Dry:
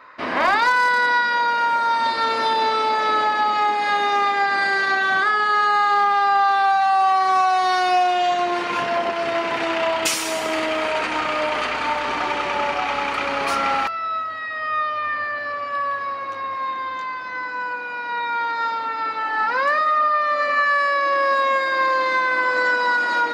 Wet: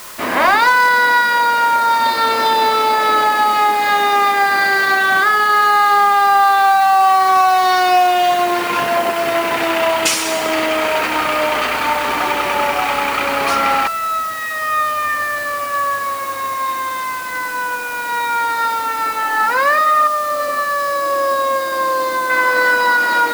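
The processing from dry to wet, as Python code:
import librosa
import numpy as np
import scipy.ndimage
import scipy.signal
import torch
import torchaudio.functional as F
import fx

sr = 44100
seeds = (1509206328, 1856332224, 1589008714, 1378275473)

y = fx.peak_eq(x, sr, hz=2300.0, db=-13.5, octaves=1.3, at=(20.07, 22.3))
y = fx.dmg_noise_colour(y, sr, seeds[0], colour='white', level_db=-40.0)
y = y * librosa.db_to_amplitude(5.5)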